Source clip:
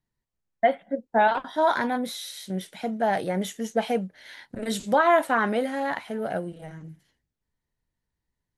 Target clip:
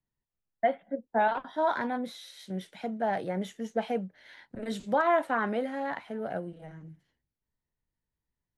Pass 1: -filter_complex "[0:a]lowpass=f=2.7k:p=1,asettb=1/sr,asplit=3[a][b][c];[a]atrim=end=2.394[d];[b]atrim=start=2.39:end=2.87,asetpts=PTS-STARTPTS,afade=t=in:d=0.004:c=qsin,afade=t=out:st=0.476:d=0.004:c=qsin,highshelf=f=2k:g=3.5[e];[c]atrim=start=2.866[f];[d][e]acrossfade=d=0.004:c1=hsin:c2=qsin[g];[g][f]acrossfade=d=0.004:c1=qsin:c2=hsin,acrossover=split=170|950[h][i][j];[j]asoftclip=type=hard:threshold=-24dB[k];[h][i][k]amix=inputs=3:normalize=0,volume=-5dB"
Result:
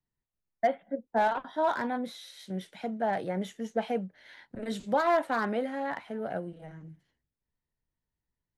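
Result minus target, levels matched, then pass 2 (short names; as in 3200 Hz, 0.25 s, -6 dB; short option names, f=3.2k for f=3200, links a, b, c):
hard clip: distortion +27 dB
-filter_complex "[0:a]lowpass=f=2.7k:p=1,asettb=1/sr,asplit=3[a][b][c];[a]atrim=end=2.394[d];[b]atrim=start=2.39:end=2.87,asetpts=PTS-STARTPTS,afade=t=in:d=0.004:c=qsin,afade=t=out:st=0.476:d=0.004:c=qsin,highshelf=f=2k:g=3.5[e];[c]atrim=start=2.866[f];[d][e]acrossfade=d=0.004:c1=hsin:c2=qsin[g];[g][f]acrossfade=d=0.004:c1=qsin:c2=hsin,acrossover=split=170|950[h][i][j];[j]asoftclip=type=hard:threshold=-15dB[k];[h][i][k]amix=inputs=3:normalize=0,volume=-5dB"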